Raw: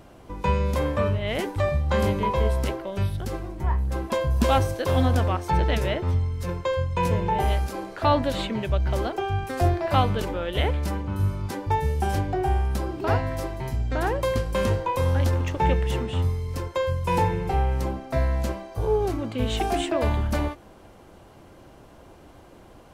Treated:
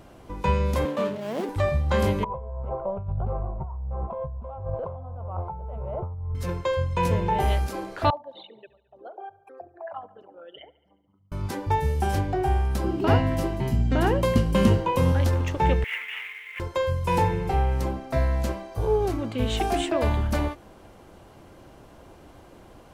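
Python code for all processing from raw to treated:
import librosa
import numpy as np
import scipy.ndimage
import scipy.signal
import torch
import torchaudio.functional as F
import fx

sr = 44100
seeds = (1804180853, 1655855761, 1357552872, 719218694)

y = fx.chain(x, sr, fx.median_filter(points=25),
    fx.steep_highpass(hz=160.0, slope=36), at=(0.85, 1.49))
y = fx.chain(y, sr, fx.lowpass(hz=1500.0, slope=24),
    fx.over_compress(threshold_db=-30.0, ratio=-1.0),
    fx.fixed_phaser(hz=730.0, stages=4), at=(2.24, 6.35))
y = fx.chain(y, sr, fx.envelope_sharpen(power=3.0),
    fx.highpass(hz=1100.0, slope=12),
    fx.echo_wet_lowpass(ms=71, feedback_pct=64, hz=3300.0, wet_db=-18.5), at=(8.1, 11.32))
y = fx.chain(y, sr, fx.doubler(ms=18.0, db=-12.5),
    fx.small_body(hz=(200.0, 2900.0), ring_ms=25, db=12), at=(12.84, 15.12))
y = fx.chain(y, sr, fx.cvsd(bps=16000),
    fx.highpass_res(hz=2100.0, q=5.8),
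    fx.quant_companded(bits=6), at=(15.84, 16.6))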